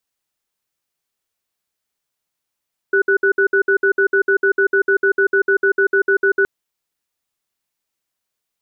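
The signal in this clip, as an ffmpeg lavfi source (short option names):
-f lavfi -i "aevalsrc='0.2*(sin(2*PI*393*t)+sin(2*PI*1480*t))*clip(min(mod(t,0.15),0.09-mod(t,0.15))/0.005,0,1)':d=3.52:s=44100"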